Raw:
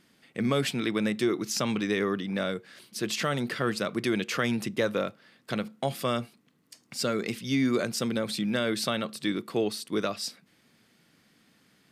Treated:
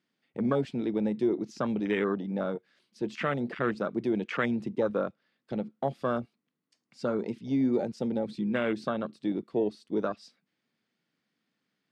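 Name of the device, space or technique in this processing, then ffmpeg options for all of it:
over-cleaned archive recording: -af "highpass=140,lowpass=5.7k,afwtdn=0.0316"

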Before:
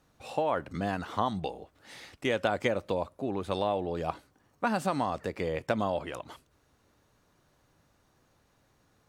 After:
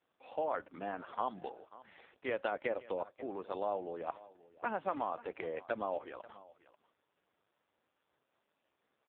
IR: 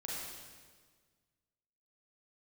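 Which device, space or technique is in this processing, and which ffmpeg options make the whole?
satellite phone: -filter_complex "[0:a]asettb=1/sr,asplit=3[a][b][c];[a]atrim=end=4.684[d];[b]atrim=start=4.68:end=5.53,asetpts=PTS-STARTPTS,afade=t=in:d=0.004:c=qsin,afade=t=out:st=0.846:d=0.004:c=qsin,highshelf=f=3.5k:g=5[e];[c]atrim=start=5.526[f];[d][e]acrossfade=d=0.004:c1=hsin:c2=qsin[g];[g][f]acrossfade=d=0.004:c1=qsin:c2=hsin,highpass=330,lowpass=3.2k,aecho=1:1:538:0.112,volume=-5dB" -ar 8000 -c:a libopencore_amrnb -b:a 4750

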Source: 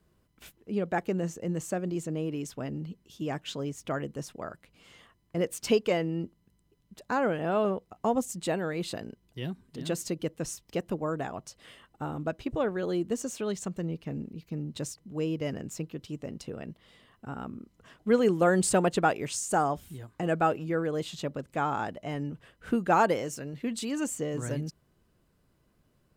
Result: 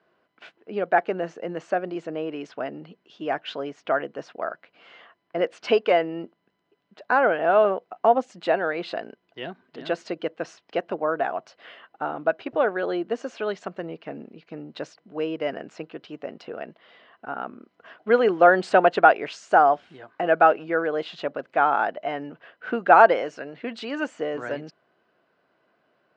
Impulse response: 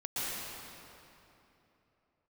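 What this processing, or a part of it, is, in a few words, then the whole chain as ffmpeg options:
phone earpiece: -af "highpass=400,equalizer=f=690:t=q:w=4:g=7,equalizer=f=1.5k:t=q:w=4:g=6,equalizer=f=3.6k:t=q:w=4:g=-4,lowpass=f=3.9k:w=0.5412,lowpass=f=3.9k:w=1.3066,volume=6.5dB"

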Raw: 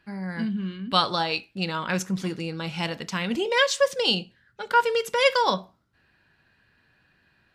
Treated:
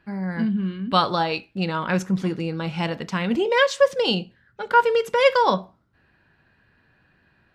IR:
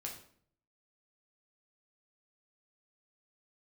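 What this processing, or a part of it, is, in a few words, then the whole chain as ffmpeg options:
through cloth: -af "highshelf=f=2.7k:g=-11.5,volume=5dB"

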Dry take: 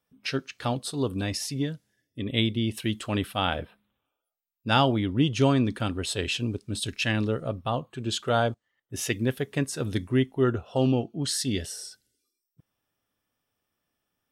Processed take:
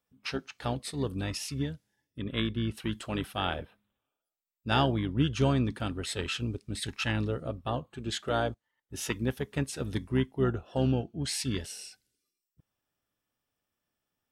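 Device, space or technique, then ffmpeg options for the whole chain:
octave pedal: -filter_complex "[0:a]asettb=1/sr,asplit=3[a][b][c];[a]atrim=end=2.224[d];[b]atrim=start=2.22:end=2.92,asetpts=PTS-STARTPTS,afade=t=in:d=0.004:c=qsin,afade=t=out:st=0.696:d=0.004:c=qsin,highshelf=f=3.7k:g=-5.5[e];[c]atrim=start=2.916[f];[d][e]acrossfade=d=0.004:c1=hsin:c2=qsin[g];[g][f]acrossfade=d=0.004:c1=qsin:c2=hsin,asplit=2[h][i];[i]asetrate=22050,aresample=44100,atempo=2,volume=-9dB[j];[h][j]amix=inputs=2:normalize=0,volume=-5dB"

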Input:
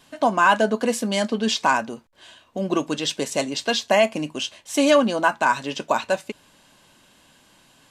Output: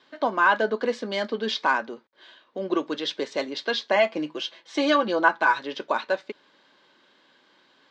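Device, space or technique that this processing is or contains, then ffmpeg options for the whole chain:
phone earpiece: -filter_complex "[0:a]asettb=1/sr,asplit=3[a][b][c];[a]atrim=end=3.954[d];[b]atrim=start=3.95:end=5.59,asetpts=PTS-STARTPTS,afade=t=in:d=0.004:c=qsin,afade=t=out:st=1.636:d=0.004:c=qsin,aecho=1:1:6:0.67,atrim=end_sample=72324[e];[c]atrim=start=5.586[f];[d][e]acrossfade=d=0.004:c1=hsin:c2=qsin[g];[g][f]acrossfade=d=0.004:c1=qsin:c2=hsin,highpass=370,equalizer=f=370:t=q:w=4:g=3,equalizer=f=700:t=q:w=4:g=-8,equalizer=f=1k:t=q:w=4:g=-3,equalizer=f=2.7k:t=q:w=4:g=-9,lowpass=f=4.2k:w=0.5412,lowpass=f=4.2k:w=1.3066"

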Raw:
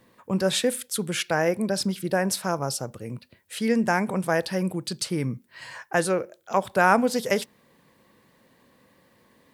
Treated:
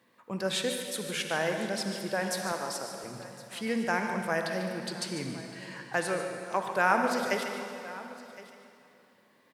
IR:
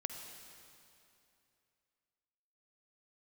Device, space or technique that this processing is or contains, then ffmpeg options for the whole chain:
PA in a hall: -filter_complex "[0:a]highpass=140,equalizer=f=2.1k:t=o:w=2.9:g=5.5,aecho=1:1:146:0.282[a];[1:a]atrim=start_sample=2205[b];[a][b]afir=irnorm=-1:irlink=0,asettb=1/sr,asplit=3[c][d][e];[c]atrim=end=2.524[f];[d]atrim=start=2.52:end=3.04,asetpts=PTS-STARTPTS,afade=t=in:d=0.004:c=qsin,afade=t=out:st=0.516:d=0.004:c=qsin,highpass=260[g];[e]atrim=start=3.036[h];[f][g]acrossfade=d=0.004:c1=hsin:c2=qsin[i];[i][h]acrossfade=d=0.004:c1=qsin:c2=hsin,aecho=1:1:1064:0.119,volume=-8dB"

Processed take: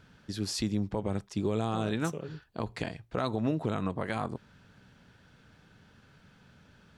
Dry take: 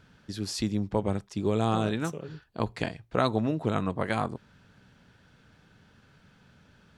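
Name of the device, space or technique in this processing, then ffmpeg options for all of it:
clipper into limiter: -af "asoftclip=type=hard:threshold=-11.5dB,alimiter=limit=-19dB:level=0:latency=1:release=97"

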